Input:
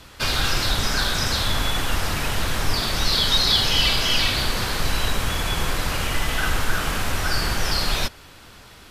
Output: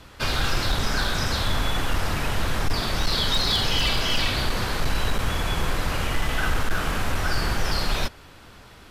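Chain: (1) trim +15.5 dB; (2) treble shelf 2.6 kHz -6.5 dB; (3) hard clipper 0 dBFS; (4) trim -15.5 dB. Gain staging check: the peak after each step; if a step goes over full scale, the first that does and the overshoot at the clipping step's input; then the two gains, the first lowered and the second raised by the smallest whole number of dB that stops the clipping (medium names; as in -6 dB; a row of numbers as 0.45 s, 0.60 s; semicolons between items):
+10.0 dBFS, +8.0 dBFS, 0.0 dBFS, -15.5 dBFS; step 1, 8.0 dB; step 1 +7.5 dB, step 4 -7.5 dB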